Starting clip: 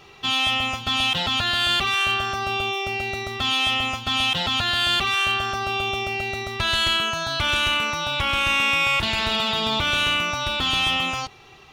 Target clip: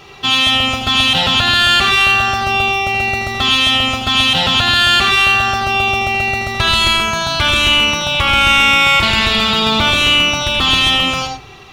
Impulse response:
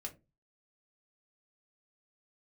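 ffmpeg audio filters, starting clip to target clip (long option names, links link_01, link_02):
-filter_complex "[0:a]asplit=2[link_01][link_02];[1:a]atrim=start_sample=2205,asetrate=27342,aresample=44100,adelay=78[link_03];[link_02][link_03]afir=irnorm=-1:irlink=0,volume=-5dB[link_04];[link_01][link_04]amix=inputs=2:normalize=0,volume=8.5dB"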